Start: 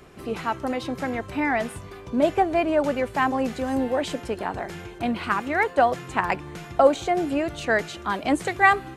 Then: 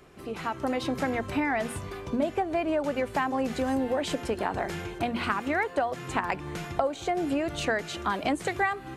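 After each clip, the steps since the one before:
downward compressor 10 to 1, threshold −26 dBFS, peak gain reduction 15.5 dB
mains-hum notches 60/120/180/240 Hz
automatic gain control gain up to 7.5 dB
level −5 dB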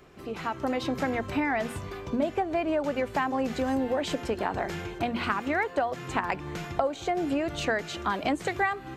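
parametric band 9,800 Hz −9 dB 0.36 octaves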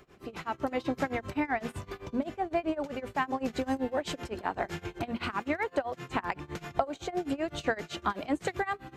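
amplitude tremolo 7.8 Hz, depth 93%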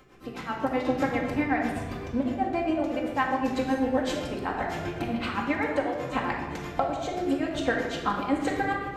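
rectangular room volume 1,200 cubic metres, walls mixed, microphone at 2.1 metres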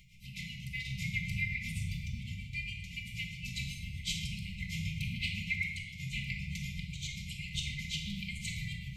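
linear-phase brick-wall band-stop 200–2,000 Hz
level +1.5 dB

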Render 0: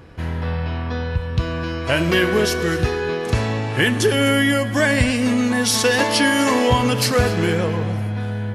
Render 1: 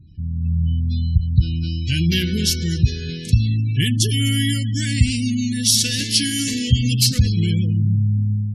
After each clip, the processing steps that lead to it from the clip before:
Chebyshev band-stop filter 160–4,000 Hz, order 2
gate on every frequency bin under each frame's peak −30 dB strong
automatic gain control gain up to 7 dB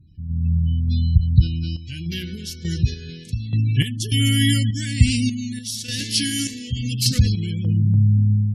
sample-and-hold tremolo 3.4 Hz, depth 85%
level +3 dB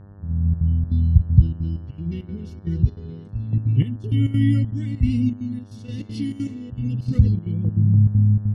Savitzky-Golay smoothing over 65 samples
gate pattern "xx.xxxx.x" 197 BPM −12 dB
hum with harmonics 100 Hz, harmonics 18, −46 dBFS −8 dB per octave
level +1 dB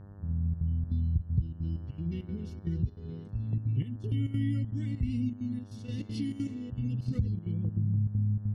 downward compressor 2.5 to 1, threshold −25 dBFS, peak gain reduction 13 dB
level −4.5 dB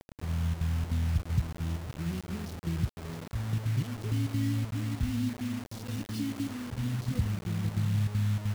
bit reduction 7 bits

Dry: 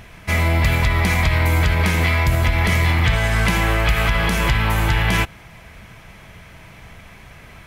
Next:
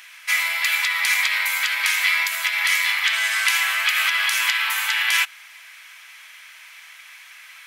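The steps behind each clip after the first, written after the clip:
Bessel high-pass filter 2,000 Hz, order 4
level +6 dB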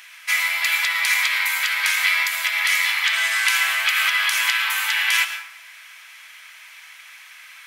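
dense smooth reverb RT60 0.77 s, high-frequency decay 0.6×, pre-delay 95 ms, DRR 8.5 dB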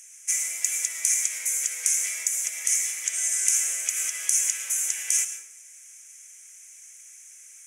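drawn EQ curve 490 Hz 0 dB, 700 Hz −18 dB, 1,000 Hz −30 dB, 2,300 Hz −19 dB, 4,300 Hz −27 dB, 6,300 Hz +10 dB, 9,700 Hz +5 dB, 14,000 Hz −13 dB
level +1.5 dB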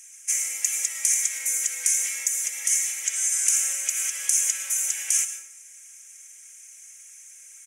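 comb filter 3.7 ms, depth 77%
level −1 dB

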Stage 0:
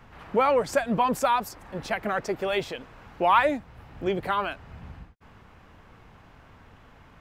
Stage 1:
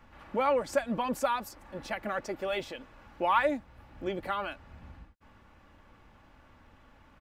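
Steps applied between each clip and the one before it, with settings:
comb filter 3.5 ms, depth 42%
level −6.5 dB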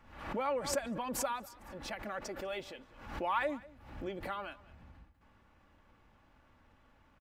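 single-tap delay 198 ms −21 dB
background raised ahead of every attack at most 77 dB per second
level −7.5 dB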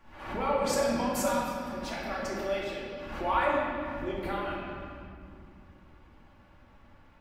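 convolution reverb RT60 2.4 s, pre-delay 3 ms, DRR −5.5 dB

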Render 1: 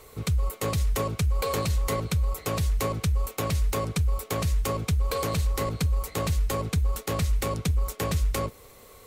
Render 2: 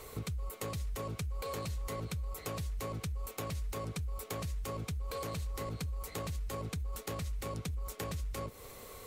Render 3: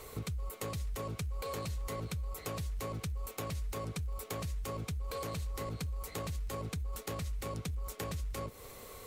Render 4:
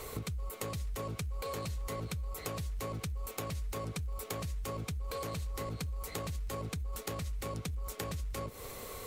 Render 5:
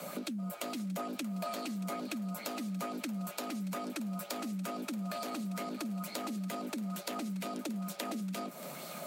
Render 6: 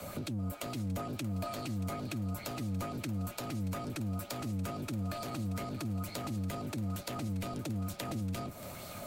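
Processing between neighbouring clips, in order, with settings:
brickwall limiter −24 dBFS, peak gain reduction 6.5 dB; downward compressor 4 to 1, threshold −38 dBFS, peak gain reduction 10 dB; level +1 dB
surface crackle 27 per second −51 dBFS
downward compressor, threshold −40 dBFS, peak gain reduction 6 dB; level +5 dB
frequency shifter +140 Hz; feedback echo with a high-pass in the loop 630 ms, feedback 64%, high-pass 860 Hz, level −14.5 dB; auto-filter bell 2.2 Hz 400–4,800 Hz +6 dB; level −1 dB
sub-octave generator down 1 octave, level +2 dB; level −1.5 dB

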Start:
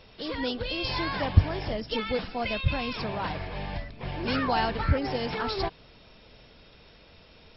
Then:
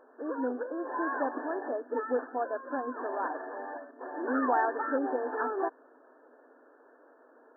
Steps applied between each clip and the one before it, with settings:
brick-wall band-pass 240–1,800 Hz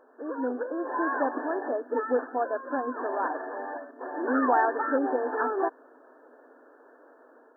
automatic gain control gain up to 4 dB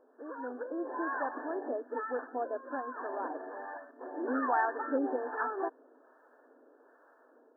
two-band tremolo in antiphase 1.2 Hz, crossover 710 Hz
level −3.5 dB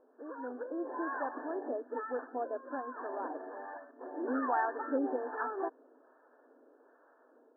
high-frequency loss of the air 470 metres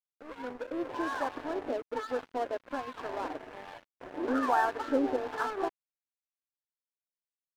dead-zone distortion −46 dBFS
level +5.5 dB

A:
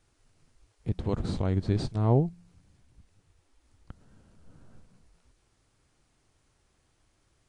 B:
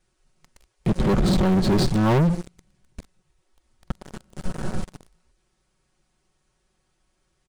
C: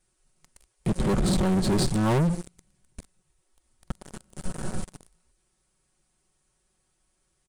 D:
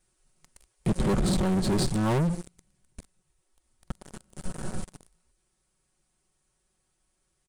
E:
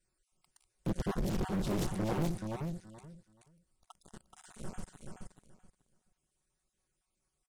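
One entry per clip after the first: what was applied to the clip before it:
comb filter 5.4 ms, depth 80%; leveller curve on the samples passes 5; brickwall limiter −22 dBFS, peak gain reduction 11 dB; level +6.5 dB
parametric band 9,100 Hz +11 dB 0.76 octaves; level −4 dB
speech leveller
time-frequency cells dropped at random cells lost 34%; on a send: repeating echo 428 ms, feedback 19%, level −5 dB; on the sum: highs frequency-modulated by the lows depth 1 ms; level −7.5 dB

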